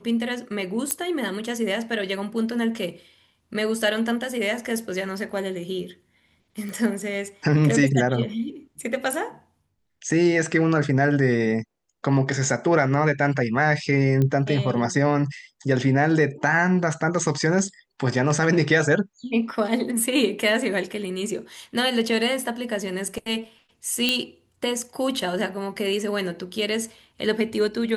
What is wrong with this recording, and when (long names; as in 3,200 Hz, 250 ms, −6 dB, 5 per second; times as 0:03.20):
0:00.91: click −7 dBFS
0:06.69: click
0:14.22: click −13 dBFS
0:24.09: click −6 dBFS